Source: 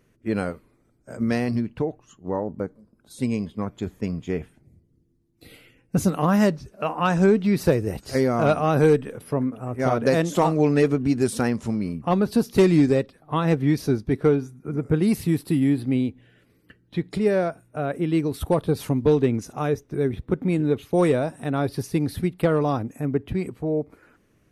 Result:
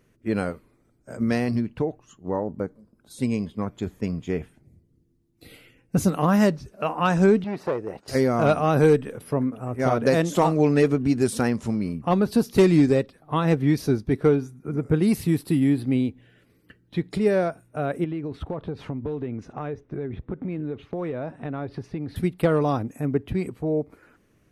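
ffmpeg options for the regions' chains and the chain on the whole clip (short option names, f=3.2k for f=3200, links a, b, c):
-filter_complex "[0:a]asettb=1/sr,asplit=3[a][b][c];[a]atrim=end=7.444[d];[b]atrim=start=7.44:end=8.08,asetpts=PTS-STARTPTS,afade=t=in:d=0.004:c=qsin,afade=t=out:st=0.636:d=0.004:c=qsin,asoftclip=type=hard:threshold=-17dB,bandpass=f=790:t=q:w=0.77[e];[c]atrim=start=8.076[f];[d][e]acrossfade=d=0.004:c1=hsin:c2=qsin[g];[g][f]acrossfade=d=0.004:c1=qsin:c2=hsin,asettb=1/sr,asplit=3[h][i][j];[h]atrim=end=18.044[k];[i]atrim=start=18.04:end=22.16,asetpts=PTS-STARTPTS,afade=t=in:d=0.004:c=qsin,afade=t=out:st=4.116:d=0.004:c=qsin,lowpass=2.5k,acompressor=threshold=-27dB:ratio=5:attack=3.2:release=140:knee=1:detection=peak[l];[j]atrim=start=22.156[m];[k][l]acrossfade=d=0.004:c1=hsin:c2=qsin[n];[n][m]acrossfade=d=0.004:c1=qsin:c2=hsin"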